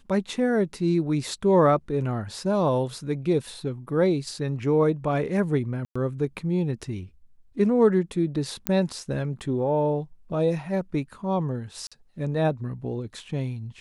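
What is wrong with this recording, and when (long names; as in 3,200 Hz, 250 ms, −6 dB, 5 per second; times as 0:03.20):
0:05.85–0:05.96: drop-out 105 ms
0:08.67: click −7 dBFS
0:11.87–0:11.92: drop-out 46 ms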